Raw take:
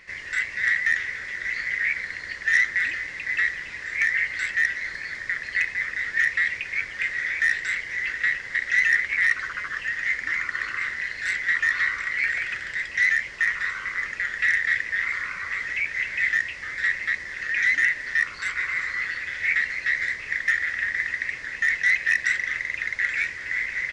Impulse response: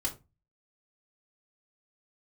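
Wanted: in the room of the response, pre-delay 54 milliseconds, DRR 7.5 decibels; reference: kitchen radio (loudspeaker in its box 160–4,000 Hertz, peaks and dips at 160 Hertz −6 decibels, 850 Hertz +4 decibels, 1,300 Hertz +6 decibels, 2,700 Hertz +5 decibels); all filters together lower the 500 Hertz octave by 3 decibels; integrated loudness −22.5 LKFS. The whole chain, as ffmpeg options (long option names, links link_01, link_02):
-filter_complex "[0:a]equalizer=frequency=500:width_type=o:gain=-4,asplit=2[link_01][link_02];[1:a]atrim=start_sample=2205,adelay=54[link_03];[link_02][link_03]afir=irnorm=-1:irlink=0,volume=-10.5dB[link_04];[link_01][link_04]amix=inputs=2:normalize=0,highpass=160,equalizer=frequency=160:width_type=q:width=4:gain=-6,equalizer=frequency=850:width_type=q:width=4:gain=4,equalizer=frequency=1300:width_type=q:width=4:gain=6,equalizer=frequency=2700:width_type=q:width=4:gain=5,lowpass=frequency=4000:width=0.5412,lowpass=frequency=4000:width=1.3066,volume=-1dB"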